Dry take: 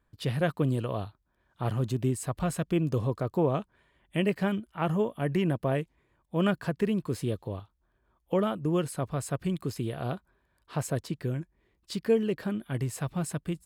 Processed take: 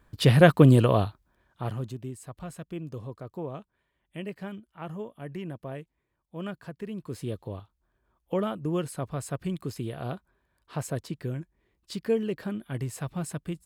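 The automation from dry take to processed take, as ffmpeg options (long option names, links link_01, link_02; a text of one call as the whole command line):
ffmpeg -i in.wav -af "volume=19.5dB,afade=type=out:start_time=0.84:duration=0.79:silence=0.237137,afade=type=out:start_time=1.63:duration=0.38:silence=0.375837,afade=type=in:start_time=6.87:duration=0.55:silence=0.375837" out.wav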